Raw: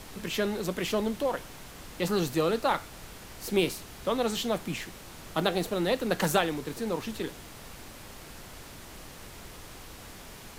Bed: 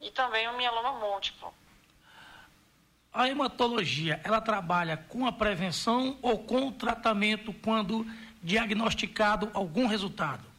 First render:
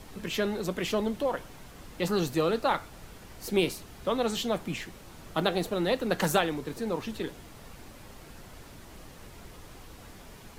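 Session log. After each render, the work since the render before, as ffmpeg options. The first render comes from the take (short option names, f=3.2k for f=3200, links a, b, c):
-af "afftdn=nr=6:nf=-47"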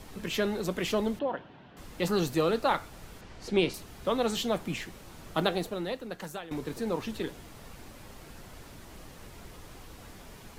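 -filter_complex "[0:a]asettb=1/sr,asplit=3[a][b][c];[a]atrim=end=1.194[d];[b]atrim=start=1.19:end=1.77,asetpts=PTS-STARTPTS,afade=t=in:d=0.004:c=qsin,afade=t=out:st=0.576:d=0.004:c=qsin,highpass=130,equalizer=f=480:t=q:w=4:g=-5,equalizer=f=1.2k:t=q:w=4:g=-6,equalizer=f=2.2k:t=q:w=4:g=-9,lowpass=f=3.1k:w=0.5412,lowpass=f=3.1k:w=1.3066[e];[c]atrim=start=1.766[f];[d][e]acrossfade=d=0.004:c1=hsin:c2=qsin[g];[g][f]acrossfade=d=0.004:c1=qsin:c2=hsin,asettb=1/sr,asplit=3[h][i][j];[h]atrim=end=3.214[k];[i]atrim=start=3.21:end=3.74,asetpts=PTS-STARTPTS,afade=t=in:d=0.004:c=qsin,afade=t=out:st=0.526:d=0.004:c=qsin,lowpass=5.4k[l];[j]atrim=start=3.736[m];[k][l]acrossfade=d=0.004:c1=hsin:c2=qsin[n];[n][m]acrossfade=d=0.004:c1=qsin:c2=hsin,asplit=2[o][p];[o]atrim=end=6.51,asetpts=PTS-STARTPTS,afade=t=out:st=5.43:d=1.08:c=qua:silence=0.16788[q];[p]atrim=start=6.51,asetpts=PTS-STARTPTS,afade=t=in:d=0.004:c=hsin:silence=0.16788[r];[q][r]concat=n=2:v=0:a=1"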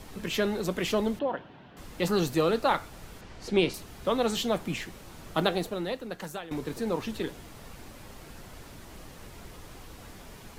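-af "volume=1.5dB"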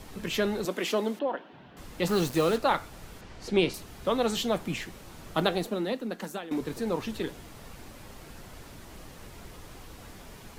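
-filter_complex "[0:a]asettb=1/sr,asplit=3[a][b][c];[a]atrim=end=0.654[d];[b]atrim=start=0.65:end=1.53,asetpts=PTS-STARTPTS,afade=t=in:d=0.004:c=qsin,afade=t=out:st=0.876:d=0.004:c=qsin,highpass=f=220:w=0.5412,highpass=f=220:w=1.3066[e];[c]atrim=start=1.526[f];[d][e]acrossfade=d=0.004:c1=hsin:c2=qsin[g];[g][f]acrossfade=d=0.004:c1=qsin:c2=hsin,asettb=1/sr,asplit=3[h][i][j];[h]atrim=end=2.094[k];[i]atrim=start=2.09:end=2.58,asetpts=PTS-STARTPTS,afade=t=in:d=0.004:c=qsin,afade=t=out:st=0.486:d=0.004:c=qsin,acrusher=bits=5:mix=0:aa=0.5[l];[j]atrim=start=2.576[m];[k][l]acrossfade=d=0.004:c1=hsin:c2=qsin[n];[n][m]acrossfade=d=0.004:c1=qsin:c2=hsin,asettb=1/sr,asplit=3[o][p][q];[o]atrim=end=5.664[r];[p]atrim=start=5.66:end=6.61,asetpts=PTS-STARTPTS,afade=t=in:d=0.004:c=qsin,afade=t=out:st=0.946:d=0.004:c=qsin,lowshelf=f=150:t=q:w=3:g=-13[s];[q]atrim=start=6.606[t];[r][s]acrossfade=d=0.004:c1=hsin:c2=qsin[u];[u][t]acrossfade=d=0.004:c1=qsin:c2=hsin"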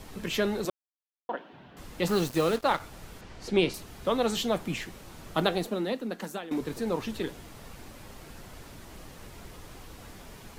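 -filter_complex "[0:a]asettb=1/sr,asplit=3[a][b][c];[a]atrim=end=2.184[d];[b]atrim=start=2.18:end=2.8,asetpts=PTS-STARTPTS,afade=t=in:d=0.004:c=qsin,afade=t=out:st=0.616:d=0.004:c=qsin,aeval=exprs='sgn(val(0))*max(abs(val(0))-0.00794,0)':c=same[e];[c]atrim=start=2.796[f];[d][e]acrossfade=d=0.004:c1=hsin:c2=qsin[g];[g][f]acrossfade=d=0.004:c1=qsin:c2=hsin,asplit=3[h][i][j];[h]atrim=end=0.7,asetpts=PTS-STARTPTS,afade=t=out:st=0.696:d=0.004:c=hsin[k];[i]atrim=start=0.7:end=1.29,asetpts=PTS-STARTPTS,volume=0[l];[j]atrim=start=1.29,asetpts=PTS-STARTPTS,afade=t=in:d=0.004:c=hsin[m];[k][l][m]concat=n=3:v=0:a=1"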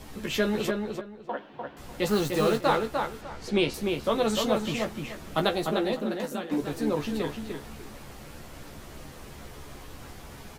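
-filter_complex "[0:a]asplit=2[a][b];[b]adelay=14,volume=-5.5dB[c];[a][c]amix=inputs=2:normalize=0,asplit=2[d][e];[e]adelay=299,lowpass=f=3.1k:p=1,volume=-4dB,asplit=2[f][g];[g]adelay=299,lowpass=f=3.1k:p=1,volume=0.24,asplit=2[h][i];[i]adelay=299,lowpass=f=3.1k:p=1,volume=0.24[j];[f][h][j]amix=inputs=3:normalize=0[k];[d][k]amix=inputs=2:normalize=0"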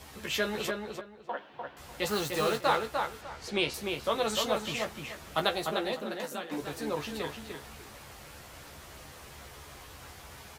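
-af "highpass=62,equalizer=f=230:w=0.63:g=-10"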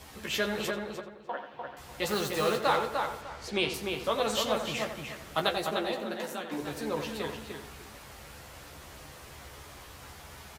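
-filter_complex "[0:a]asplit=2[a][b];[b]adelay=88,lowpass=f=2.6k:p=1,volume=-8dB,asplit=2[c][d];[d]adelay=88,lowpass=f=2.6k:p=1,volume=0.38,asplit=2[e][f];[f]adelay=88,lowpass=f=2.6k:p=1,volume=0.38,asplit=2[g][h];[h]adelay=88,lowpass=f=2.6k:p=1,volume=0.38[i];[a][c][e][g][i]amix=inputs=5:normalize=0"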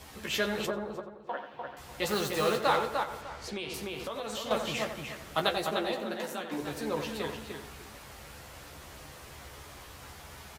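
-filter_complex "[0:a]asplit=3[a][b][c];[a]afade=t=out:st=0.65:d=0.02[d];[b]highshelf=f=1.5k:t=q:w=1.5:g=-8.5,afade=t=in:st=0.65:d=0.02,afade=t=out:st=1.26:d=0.02[e];[c]afade=t=in:st=1.26:d=0.02[f];[d][e][f]amix=inputs=3:normalize=0,asettb=1/sr,asplit=3[g][h][i];[g]atrim=end=3.034[j];[h]atrim=start=3.03:end=4.51,asetpts=PTS-STARTPTS,afade=t=in:d=0.004:c=qsin,afade=t=out:st=1.476:d=0.004:c=qsin,acompressor=threshold=-33dB:ratio=6:attack=3.2:release=140:knee=1:detection=peak[k];[i]atrim=start=4.506[l];[j][k]acrossfade=d=0.004:c1=hsin:c2=qsin[m];[m][l]acrossfade=d=0.004:c1=qsin:c2=hsin"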